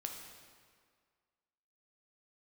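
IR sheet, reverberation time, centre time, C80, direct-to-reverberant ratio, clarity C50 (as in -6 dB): 1.9 s, 52 ms, 5.5 dB, 2.0 dB, 4.0 dB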